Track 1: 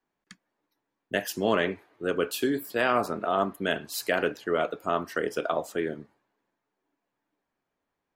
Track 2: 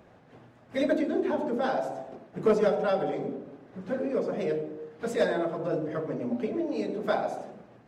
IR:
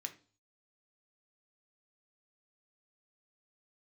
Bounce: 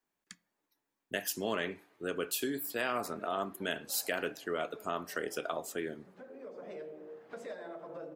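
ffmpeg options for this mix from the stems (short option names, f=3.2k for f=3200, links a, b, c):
-filter_complex "[0:a]highshelf=f=4.8k:g=9.5,acompressor=threshold=-31dB:ratio=1.5,volume=-6.5dB,asplit=3[a][b][c];[b]volume=-8dB[d];[1:a]highpass=f=710:p=1,highshelf=f=2.2k:g=-8.5,acompressor=threshold=-41dB:ratio=5,adelay=2300,volume=-1dB[e];[c]apad=whole_len=448818[f];[e][f]sidechaincompress=threshold=-43dB:ratio=8:attack=9.8:release=963[g];[2:a]atrim=start_sample=2205[h];[d][h]afir=irnorm=-1:irlink=0[i];[a][g][i]amix=inputs=3:normalize=0"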